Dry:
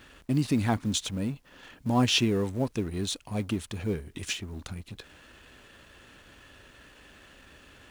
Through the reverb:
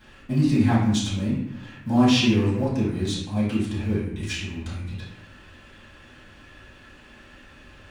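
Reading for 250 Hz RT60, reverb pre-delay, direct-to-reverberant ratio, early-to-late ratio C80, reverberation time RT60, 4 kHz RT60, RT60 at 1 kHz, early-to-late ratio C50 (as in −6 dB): 1.1 s, 4 ms, −10.0 dB, 5.0 dB, 0.75 s, 0.55 s, 0.80 s, 2.0 dB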